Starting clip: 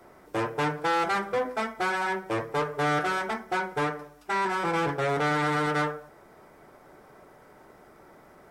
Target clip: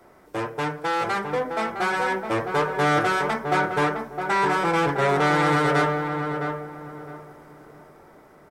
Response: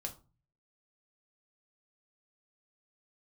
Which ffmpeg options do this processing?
-filter_complex "[0:a]dynaudnorm=framelen=720:gausssize=5:maxgain=5dB,asplit=2[link_01][link_02];[link_02]adelay=661,lowpass=frequency=1400:poles=1,volume=-5dB,asplit=2[link_03][link_04];[link_04]adelay=661,lowpass=frequency=1400:poles=1,volume=0.3,asplit=2[link_05][link_06];[link_06]adelay=661,lowpass=frequency=1400:poles=1,volume=0.3,asplit=2[link_07][link_08];[link_08]adelay=661,lowpass=frequency=1400:poles=1,volume=0.3[link_09];[link_01][link_03][link_05][link_07][link_09]amix=inputs=5:normalize=0"

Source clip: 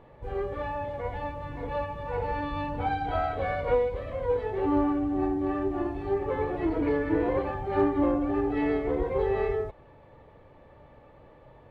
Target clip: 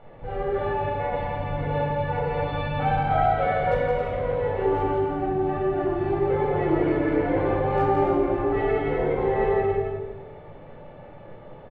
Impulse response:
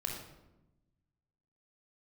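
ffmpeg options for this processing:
-filter_complex "[0:a]lowpass=frequency=3900:width=0.5412,lowpass=frequency=3900:width=1.3066,equalizer=frequency=64:width=1:gain=-14,asplit=2[link_01][link_02];[link_02]acompressor=threshold=-33dB:ratio=12,volume=1dB[link_03];[link_01][link_03]amix=inputs=2:normalize=0,asoftclip=type=hard:threshold=-14dB,aecho=1:1:170|272|333.2|369.9|392:0.631|0.398|0.251|0.158|0.1[link_04];[1:a]atrim=start_sample=2205,asetrate=52920,aresample=44100[link_05];[link_04][link_05]afir=irnorm=-1:irlink=0"

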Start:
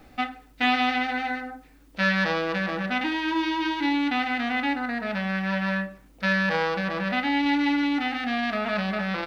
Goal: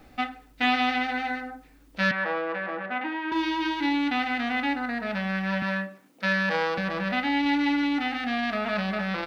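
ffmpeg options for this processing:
ffmpeg -i in.wav -filter_complex "[0:a]asettb=1/sr,asplit=3[link_01][link_02][link_03];[link_01]atrim=end=2.114[link_04];[link_02]atrim=start=2.11:end=3.32,asetpts=PTS-STARTPTS,afade=type=in:duration=0.004:curve=qsin,afade=type=out:start_time=1.206:duration=0.004:curve=qsin,acrossover=split=280 2400:gain=0.1 1 0.0794[link_05][link_06][link_07];[link_05][link_06][link_07]amix=inputs=3:normalize=0[link_08];[link_03]atrim=start=3.316[link_09];[link_04][link_08]acrossfade=duration=0.004:curve1=hsin:curve2=qsin[link_10];[link_10][link_09]acrossfade=duration=0.004:curve1=qsin:curve2=hsin,asettb=1/sr,asplit=3[link_11][link_12][link_13];[link_11]atrim=end=5.624[link_14];[link_12]atrim=start=5.62:end=6.78,asetpts=PTS-STARTPTS,afade=type=in:duration=0.004:curve=qsin,afade=type=out:start_time=1.156:duration=0.004:curve=qsin,highpass=frequency=180:width=0.5412,highpass=frequency=180:width=1.3066[link_15];[link_13]atrim=start=6.776[link_16];[link_14][link_15]acrossfade=duration=0.004:curve1=hsin:curve2=qsin[link_17];[link_17][link_16]acrossfade=duration=0.004:curve1=qsin:curve2=hsin,volume=-1dB" out.wav

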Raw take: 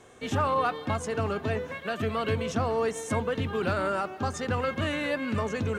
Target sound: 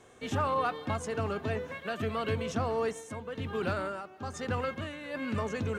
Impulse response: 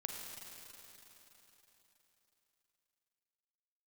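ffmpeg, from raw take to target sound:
-filter_complex "[0:a]asplit=3[link_01][link_02][link_03];[link_01]afade=type=out:start_time=2.92:duration=0.02[link_04];[link_02]tremolo=f=1.1:d=0.65,afade=type=in:start_time=2.92:duration=0.02,afade=type=out:start_time=5.14:duration=0.02[link_05];[link_03]afade=type=in:start_time=5.14:duration=0.02[link_06];[link_04][link_05][link_06]amix=inputs=3:normalize=0,volume=-3.5dB"

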